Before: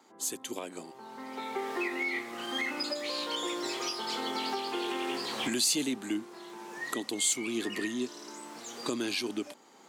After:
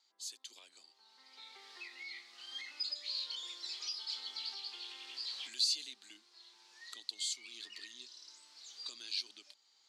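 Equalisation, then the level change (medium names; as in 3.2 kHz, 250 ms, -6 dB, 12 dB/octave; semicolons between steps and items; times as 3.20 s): band-pass filter 4.4 kHz, Q 3.5; 0.0 dB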